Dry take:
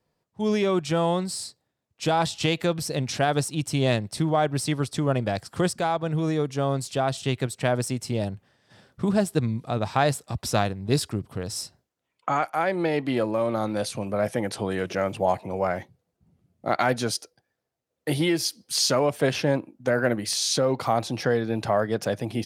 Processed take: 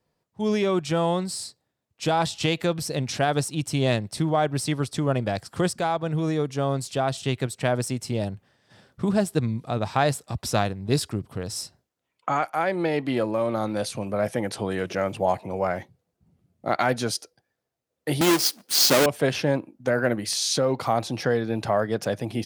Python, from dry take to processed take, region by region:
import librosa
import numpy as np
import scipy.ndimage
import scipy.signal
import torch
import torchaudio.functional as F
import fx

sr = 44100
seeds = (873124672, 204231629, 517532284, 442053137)

y = fx.chain(x, sr, fx.halfwave_hold(),
    fx.highpass(hz=210.0, slope=12),
    fx.high_shelf(hz=5700.0, db=3.0), at=(18.21, 19.06))